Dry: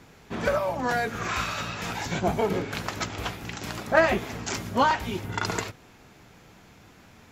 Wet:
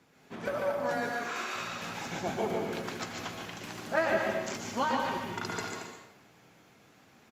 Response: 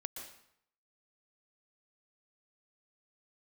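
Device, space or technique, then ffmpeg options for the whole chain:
far-field microphone of a smart speaker: -filter_complex "[0:a]asettb=1/sr,asplit=3[s0][s1][s2];[s0]atrim=end=1.094[s3];[s1]atrim=start=1.09:end=1.55,asetpts=PTS-STARTPTS,afade=t=in:d=0.004:c=qsin,afade=t=out:st=0.456:d=0.004:c=qsin,highpass=f=280:w=0.5412,highpass=f=280:w=1.3066[s4];[s2]atrim=start=1.546[s5];[s3][s4]acrossfade=d=0.004:c1=hsin:c2=qsin[s6];[s6][s5]acrossfade=d=0.004:c1=qsin:c2=hsin,aecho=1:1:145.8|227.4:0.501|0.355[s7];[1:a]atrim=start_sample=2205[s8];[s7][s8]afir=irnorm=-1:irlink=0,highpass=140,dynaudnorm=f=120:g=3:m=1.41,volume=0.376" -ar 48000 -c:a libopus -b:a 48k

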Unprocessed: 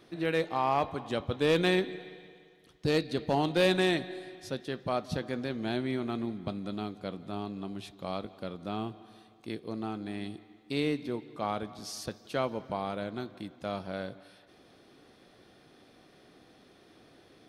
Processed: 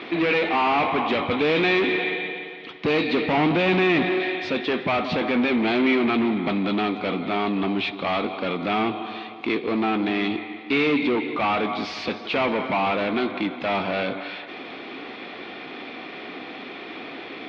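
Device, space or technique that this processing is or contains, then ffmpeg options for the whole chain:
overdrive pedal into a guitar cabinet: -filter_complex "[0:a]asettb=1/sr,asplit=3[s0][s1][s2];[s0]atrim=end=3.374[s3];[s1]atrim=start=3.37:end=4.2,asetpts=PTS-STARTPTS,afade=t=in:d=0.004:c=qsin,afade=t=out:st=0.826:d=0.004:c=qsin,aemphasis=mode=reproduction:type=bsi[s4];[s2]atrim=start=4.196[s5];[s3][s4]acrossfade=d=0.004:c1=hsin:c2=qsin[s6];[s6][s5]acrossfade=d=0.004:c1=qsin:c2=hsin,asplit=2[s7][s8];[s8]highpass=f=720:p=1,volume=44.7,asoftclip=type=tanh:threshold=0.211[s9];[s7][s9]amix=inputs=2:normalize=0,lowpass=f=3400:p=1,volume=0.501,highpass=83,equalizer=f=130:t=q:w=4:g=-6,equalizer=f=260:t=q:w=4:g=5,equalizer=f=570:t=q:w=4:g=-5,equalizer=f=1600:t=q:w=4:g=-5,equalizer=f=2300:t=q:w=4:g=8,lowpass=f=3700:w=0.5412,lowpass=f=3700:w=1.3066"

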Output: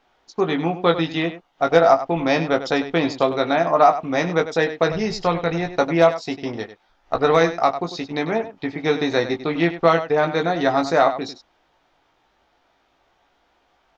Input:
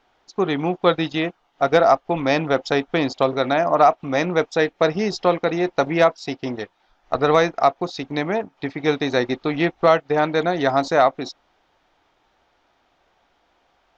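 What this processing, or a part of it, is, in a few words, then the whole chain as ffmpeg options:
slapback doubling: -filter_complex "[0:a]asplit=3[s0][s1][s2];[s0]afade=t=out:st=4.88:d=0.02[s3];[s1]asubboost=boost=8.5:cutoff=89,afade=t=in:st=4.88:d=0.02,afade=t=out:st=5.74:d=0.02[s4];[s2]afade=t=in:st=5.74:d=0.02[s5];[s3][s4][s5]amix=inputs=3:normalize=0,asplit=3[s6][s7][s8];[s7]adelay=18,volume=0.531[s9];[s8]adelay=98,volume=0.251[s10];[s6][s9][s10]amix=inputs=3:normalize=0,volume=0.891"

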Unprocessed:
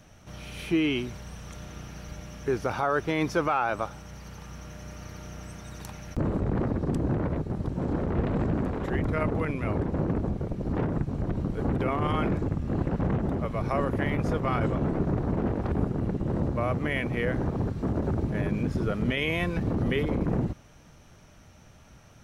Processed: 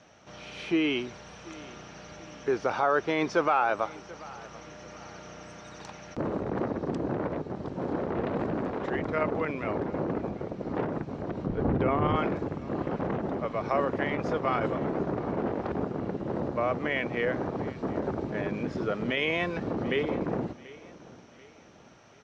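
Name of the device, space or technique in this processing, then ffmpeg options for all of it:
filter by subtraction: -filter_complex "[0:a]asettb=1/sr,asplit=3[s0][s1][s2];[s0]atrim=end=11.464[s3];[s1]atrim=start=11.46:end=12.16,asetpts=PTS-STARTPTS,afade=t=in:d=0.004:c=qsin,afade=t=out:st=0.696:d=0.004:c=qsin,aemphasis=mode=reproduction:type=bsi[s4];[s2]atrim=start=12.156[s5];[s3][s4]acrossfade=d=0.004:c1=hsin:c2=qsin[s6];[s6][s5]acrossfade=d=0.004:c1=qsin:c2=hsin,lowpass=f=6200:w=0.5412,lowpass=f=6200:w=1.3066,aecho=1:1:736|1472|2208:0.1|0.042|0.0176,asplit=2[s7][s8];[s8]lowpass=530,volume=-1[s9];[s7][s9]amix=inputs=2:normalize=0"

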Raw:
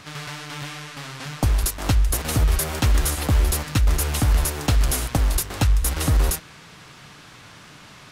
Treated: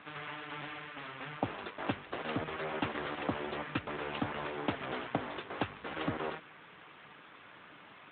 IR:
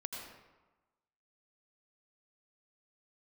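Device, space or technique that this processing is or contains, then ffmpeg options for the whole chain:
telephone: -af "highpass=260,lowpass=3200,volume=0.562" -ar 8000 -c:a libopencore_amrnb -b:a 12200

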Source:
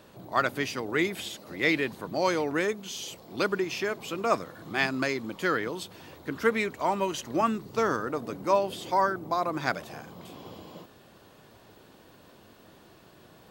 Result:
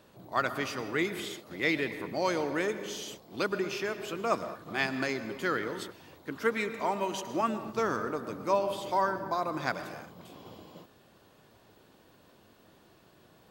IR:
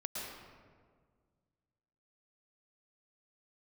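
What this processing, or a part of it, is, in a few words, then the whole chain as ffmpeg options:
keyed gated reverb: -filter_complex "[0:a]asplit=3[s0][s1][s2];[1:a]atrim=start_sample=2205[s3];[s1][s3]afir=irnorm=-1:irlink=0[s4];[s2]apad=whole_len=595705[s5];[s4][s5]sidechaingate=range=0.0224:threshold=0.00708:ratio=16:detection=peak,volume=0.398[s6];[s0][s6]amix=inputs=2:normalize=0,asettb=1/sr,asplit=3[s7][s8][s9];[s7]atrim=end=6.194[s10];[s8]atrim=start=6.19:end=7.61,asetpts=PTS-STARTPTS,afade=t=in:d=0.004:c=qsin,afade=t=out:st=1.416:d=0.004:c=qsin,highpass=f=140:p=1[s11];[s9]atrim=start=7.606[s12];[s10][s11]acrossfade=d=0.004:c1=hsin:c2=qsin[s13];[s13][s12]acrossfade=d=0.004:c1=qsin:c2=hsin,volume=0.531"

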